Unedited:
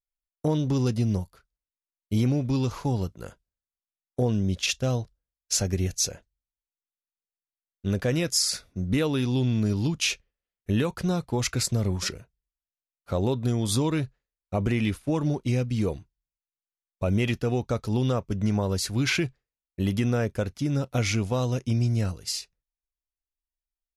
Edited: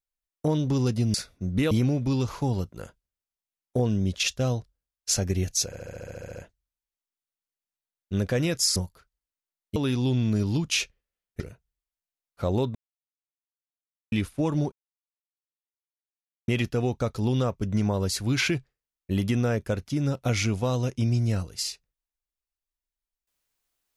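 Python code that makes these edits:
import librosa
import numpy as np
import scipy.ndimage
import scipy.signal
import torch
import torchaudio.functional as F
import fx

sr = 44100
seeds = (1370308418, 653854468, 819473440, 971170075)

y = fx.edit(x, sr, fx.swap(start_s=1.14, length_s=1.0, other_s=8.49, other_length_s=0.57),
    fx.stutter(start_s=6.09, slice_s=0.07, count=11),
    fx.cut(start_s=10.7, length_s=1.39),
    fx.silence(start_s=13.44, length_s=1.37),
    fx.silence(start_s=15.41, length_s=1.76), tone=tone)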